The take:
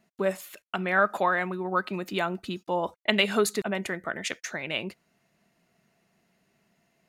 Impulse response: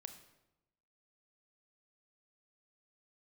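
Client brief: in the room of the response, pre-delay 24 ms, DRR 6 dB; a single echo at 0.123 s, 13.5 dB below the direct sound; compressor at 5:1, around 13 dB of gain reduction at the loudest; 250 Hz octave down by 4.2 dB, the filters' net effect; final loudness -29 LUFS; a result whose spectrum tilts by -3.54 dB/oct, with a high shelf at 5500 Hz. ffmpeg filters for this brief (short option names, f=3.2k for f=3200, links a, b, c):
-filter_complex "[0:a]equalizer=f=250:t=o:g=-6.5,highshelf=f=5.5k:g=7,acompressor=threshold=-32dB:ratio=5,aecho=1:1:123:0.211,asplit=2[a][b];[1:a]atrim=start_sample=2205,adelay=24[c];[b][c]afir=irnorm=-1:irlink=0,volume=-1dB[d];[a][d]amix=inputs=2:normalize=0,volume=6dB"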